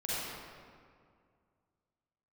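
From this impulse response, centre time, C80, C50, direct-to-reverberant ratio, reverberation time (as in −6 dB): 163 ms, −3.5 dB, −6.5 dB, −10.0 dB, 2.1 s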